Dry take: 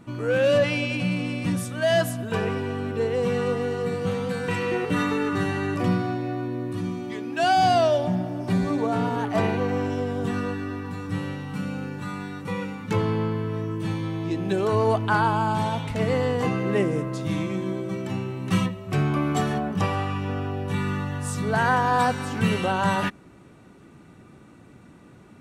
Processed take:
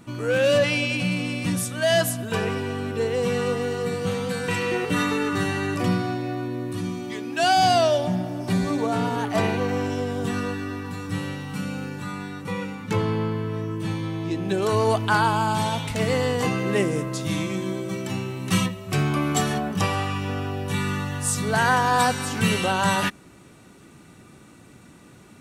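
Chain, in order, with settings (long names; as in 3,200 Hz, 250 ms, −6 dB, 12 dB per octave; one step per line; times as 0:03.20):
high-shelf EQ 3,100 Hz +9 dB, from 0:12.02 +4 dB, from 0:14.62 +12 dB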